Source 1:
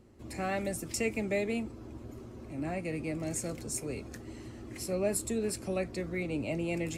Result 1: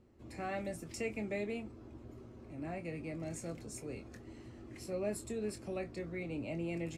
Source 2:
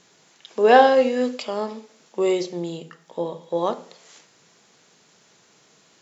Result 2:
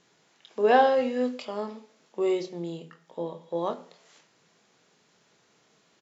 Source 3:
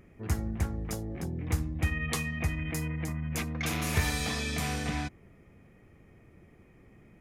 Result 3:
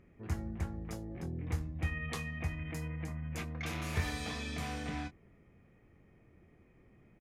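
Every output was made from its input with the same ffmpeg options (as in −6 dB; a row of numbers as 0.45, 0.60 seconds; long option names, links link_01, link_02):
-filter_complex "[0:a]highshelf=frequency=6800:gain=-10.5,asplit=2[link_01][link_02];[link_02]adelay=24,volume=-9dB[link_03];[link_01][link_03]amix=inputs=2:normalize=0,volume=-6.5dB"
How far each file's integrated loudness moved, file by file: −7.0, −6.0, −6.5 LU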